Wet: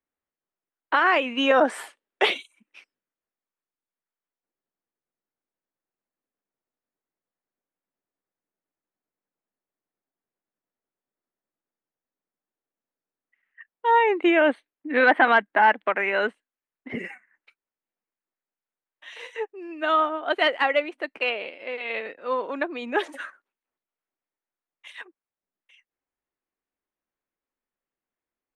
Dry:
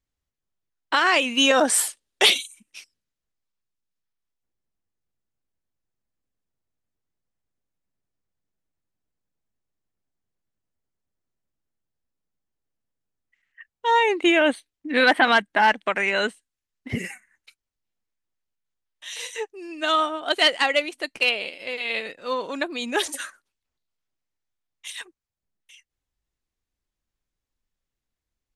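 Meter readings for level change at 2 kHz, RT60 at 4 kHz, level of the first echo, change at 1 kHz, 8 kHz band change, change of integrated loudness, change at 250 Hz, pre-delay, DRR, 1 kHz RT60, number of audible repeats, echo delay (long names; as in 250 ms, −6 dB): −1.5 dB, no reverb audible, no echo audible, +1.0 dB, below −20 dB, −1.5 dB, −1.0 dB, no reverb audible, no reverb audible, no reverb audible, no echo audible, no echo audible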